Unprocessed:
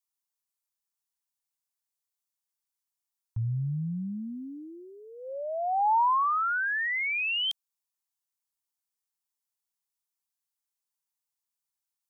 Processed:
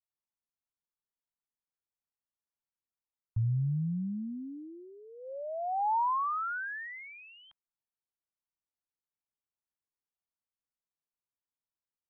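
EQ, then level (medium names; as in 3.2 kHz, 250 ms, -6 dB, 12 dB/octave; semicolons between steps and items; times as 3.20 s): low-pass 1.6 kHz 24 dB/octave; bass shelf 320 Hz +7.5 dB; -6.0 dB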